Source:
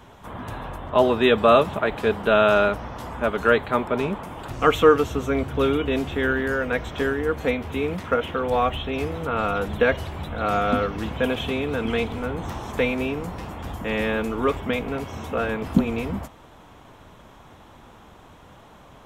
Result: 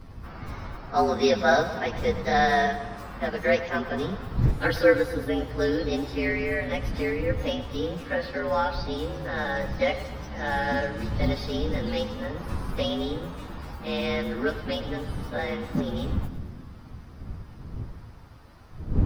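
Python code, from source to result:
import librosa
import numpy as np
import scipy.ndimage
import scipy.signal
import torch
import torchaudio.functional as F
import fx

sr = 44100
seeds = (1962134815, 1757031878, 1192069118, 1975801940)

y = fx.partial_stretch(x, sr, pct=115)
y = fx.dmg_wind(y, sr, seeds[0], corner_hz=110.0, level_db=-32.0)
y = fx.echo_split(y, sr, split_hz=360.0, low_ms=271, high_ms=110, feedback_pct=52, wet_db=-13)
y = y * librosa.db_to_amplitude(-2.5)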